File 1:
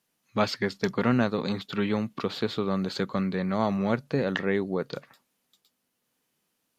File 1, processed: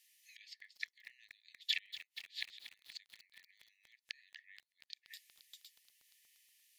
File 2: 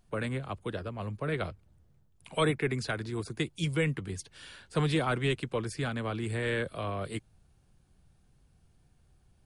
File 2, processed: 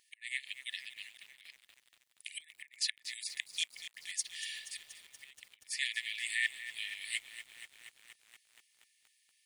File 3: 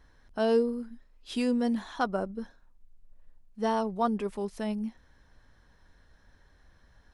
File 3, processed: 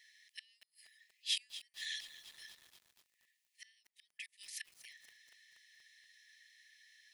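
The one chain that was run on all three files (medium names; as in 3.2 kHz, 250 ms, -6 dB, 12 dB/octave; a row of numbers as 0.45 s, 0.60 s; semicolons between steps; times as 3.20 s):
inverted gate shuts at -22 dBFS, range -32 dB; brick-wall FIR high-pass 1.7 kHz; bit-crushed delay 238 ms, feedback 80%, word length 10-bit, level -12.5 dB; trim +8 dB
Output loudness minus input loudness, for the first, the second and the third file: -17.0 LU, -5.5 LU, -13.0 LU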